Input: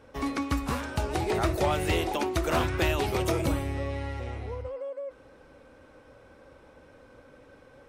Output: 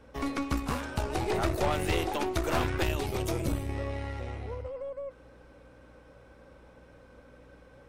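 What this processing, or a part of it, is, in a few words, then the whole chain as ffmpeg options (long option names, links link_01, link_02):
valve amplifier with mains hum: -filter_complex "[0:a]asettb=1/sr,asplit=3[link_01][link_02][link_03];[link_01]atrim=end=2.834[link_04];[link_02]atrim=start=2.83:end=3.69,asetpts=PTS-STARTPTS,afade=type=in:duration=0.004:curve=qsin,afade=type=out:start_time=0.856:duration=0.004:curve=qsin,equalizer=frequency=1200:width=0.38:gain=-5.5[link_05];[link_03]atrim=start=3.686[link_06];[link_04][link_05]acrossfade=duration=0.004:curve1=hsin:curve2=qsin[link_07];[link_07][link_06]acrossfade=duration=0.004:curve1=qsin:curve2=hsin,aeval=exprs='(tanh(12.6*val(0)+0.65)-tanh(0.65))/12.6':channel_layout=same,aeval=exprs='val(0)+0.00112*(sin(2*PI*60*n/s)+sin(2*PI*2*60*n/s)/2+sin(2*PI*3*60*n/s)/3+sin(2*PI*4*60*n/s)/4+sin(2*PI*5*60*n/s)/5)':channel_layout=same,volume=1.5dB"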